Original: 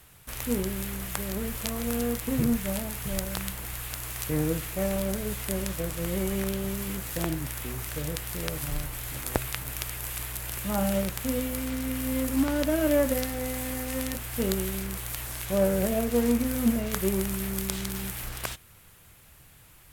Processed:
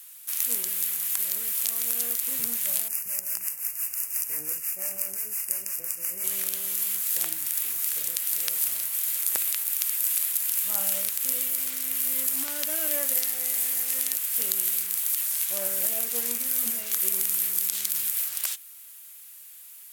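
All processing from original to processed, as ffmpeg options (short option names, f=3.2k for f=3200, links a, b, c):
-filter_complex "[0:a]asettb=1/sr,asplit=3[a][b][c];[a]atrim=end=2.884[d];[b]atrim=start=2.88:end=6.24,asetpts=PTS-STARTPTS,afade=t=in:d=0.004:c=qsin,afade=t=out:st=3.356:d=0.004:c=qsin,acrossover=split=550[e][f];[e]aeval=exprs='val(0)*(1-0.7/2+0.7/2*cos(2*PI*5.8*n/s))':c=same[g];[f]aeval=exprs='val(0)*(1-0.7/2-0.7/2*cos(2*PI*5.8*n/s))':c=same[h];[g][h]amix=inputs=2:normalize=0,asuperstop=centerf=3700:order=12:qfactor=2[i];[c]atrim=start=6.236[j];[d][i]acrossfade=d=0.004:c1=hsin:c2=qsin[k];[k][j]acrossfade=d=0.004:c1=qsin:c2=hsin,aderivative,alimiter=level_in=12dB:limit=-1dB:release=50:level=0:latency=1,volume=-3.5dB"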